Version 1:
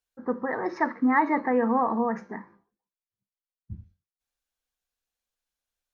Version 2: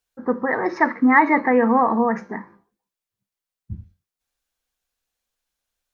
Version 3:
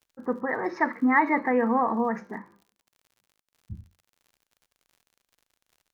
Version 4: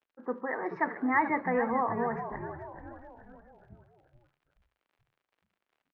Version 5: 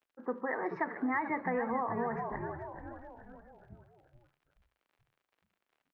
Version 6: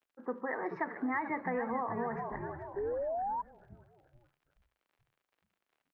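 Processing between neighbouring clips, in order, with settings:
dynamic bell 2.2 kHz, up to +6 dB, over -44 dBFS, Q 2.4; trim +6.5 dB
crackle 62 per s -41 dBFS; trim -6.5 dB
three-band isolator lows -13 dB, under 230 Hz, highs -23 dB, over 3.1 kHz; frequency-shifting echo 429 ms, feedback 48%, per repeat -72 Hz, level -10 dB; trim -4.5 dB
compression 6:1, threshold -29 dBFS, peak gain reduction 8.5 dB
painted sound rise, 2.76–3.42 s, 390–1000 Hz -33 dBFS; trim -1.5 dB

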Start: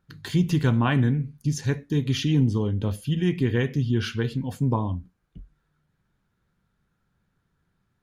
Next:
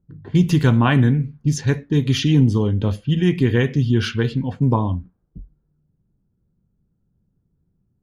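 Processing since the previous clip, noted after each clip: level-controlled noise filter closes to 340 Hz, open at -20 dBFS; trim +6 dB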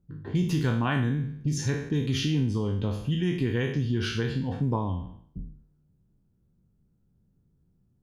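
spectral sustain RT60 0.54 s; compression 2:1, threshold -28 dBFS, peak gain reduction 10 dB; trim -2 dB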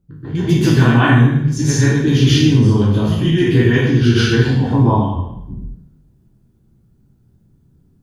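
plate-style reverb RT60 0.72 s, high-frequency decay 0.8×, pre-delay 115 ms, DRR -9 dB; trim +4.5 dB

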